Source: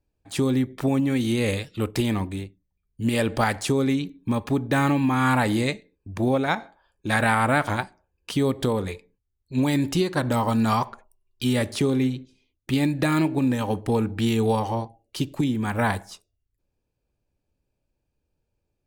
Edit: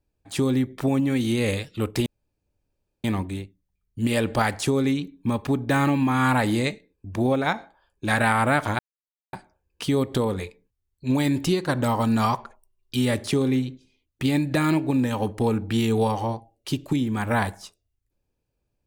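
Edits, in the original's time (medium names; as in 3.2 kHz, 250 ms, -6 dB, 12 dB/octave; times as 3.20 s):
2.06 s: insert room tone 0.98 s
7.81 s: insert silence 0.54 s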